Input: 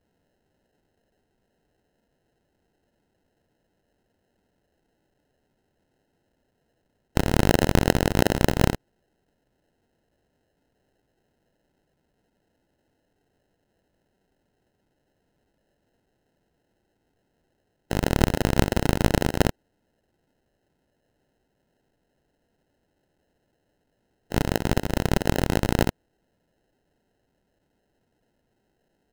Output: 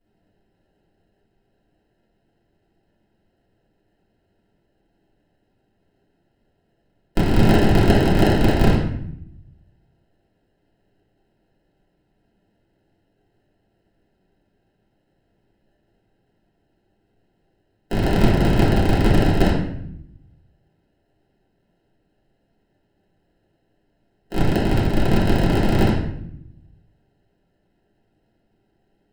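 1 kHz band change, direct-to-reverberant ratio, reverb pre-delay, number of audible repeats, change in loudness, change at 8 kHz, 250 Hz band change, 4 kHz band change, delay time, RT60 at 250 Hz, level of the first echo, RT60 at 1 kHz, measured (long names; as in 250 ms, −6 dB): +3.5 dB, −8.0 dB, 4 ms, no echo audible, +4.5 dB, −5.0 dB, +6.5 dB, +2.0 dB, no echo audible, 1.2 s, no echo audible, 0.65 s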